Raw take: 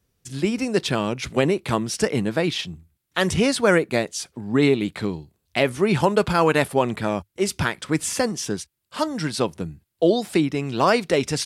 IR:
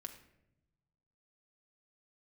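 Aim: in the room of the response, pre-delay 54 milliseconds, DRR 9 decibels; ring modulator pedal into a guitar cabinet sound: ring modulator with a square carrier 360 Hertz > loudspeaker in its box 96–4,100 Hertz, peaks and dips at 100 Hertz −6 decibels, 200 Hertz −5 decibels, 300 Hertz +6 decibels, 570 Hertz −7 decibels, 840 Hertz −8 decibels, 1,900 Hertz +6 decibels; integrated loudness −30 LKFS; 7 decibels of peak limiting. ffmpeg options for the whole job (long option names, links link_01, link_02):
-filter_complex "[0:a]alimiter=limit=-12dB:level=0:latency=1,asplit=2[link_01][link_02];[1:a]atrim=start_sample=2205,adelay=54[link_03];[link_02][link_03]afir=irnorm=-1:irlink=0,volume=-5dB[link_04];[link_01][link_04]amix=inputs=2:normalize=0,aeval=exprs='val(0)*sgn(sin(2*PI*360*n/s))':channel_layout=same,highpass=96,equalizer=frequency=100:width_type=q:width=4:gain=-6,equalizer=frequency=200:width_type=q:width=4:gain=-5,equalizer=frequency=300:width_type=q:width=4:gain=6,equalizer=frequency=570:width_type=q:width=4:gain=-7,equalizer=frequency=840:width_type=q:width=4:gain=-8,equalizer=frequency=1900:width_type=q:width=4:gain=6,lowpass=frequency=4100:width=0.5412,lowpass=frequency=4100:width=1.3066,volume=-3.5dB"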